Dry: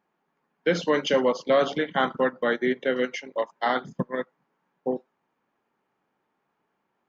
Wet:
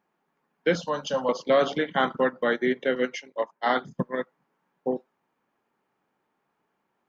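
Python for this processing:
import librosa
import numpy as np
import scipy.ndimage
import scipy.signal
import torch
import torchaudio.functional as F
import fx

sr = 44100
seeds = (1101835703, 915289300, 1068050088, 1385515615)

y = fx.fixed_phaser(x, sr, hz=870.0, stages=4, at=(0.75, 1.29))
y = fx.band_widen(y, sr, depth_pct=100, at=(2.95, 3.98))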